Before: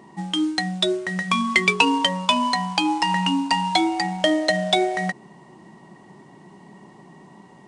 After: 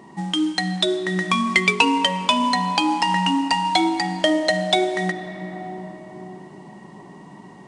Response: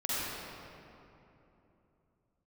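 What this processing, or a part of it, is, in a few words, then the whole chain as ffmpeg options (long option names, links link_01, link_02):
ducked reverb: -filter_complex "[0:a]asplit=3[link_01][link_02][link_03];[1:a]atrim=start_sample=2205[link_04];[link_02][link_04]afir=irnorm=-1:irlink=0[link_05];[link_03]apad=whole_len=338270[link_06];[link_05][link_06]sidechaincompress=threshold=-25dB:ratio=8:attack=16:release=1100,volume=-8.5dB[link_07];[link_01][link_07]amix=inputs=2:normalize=0"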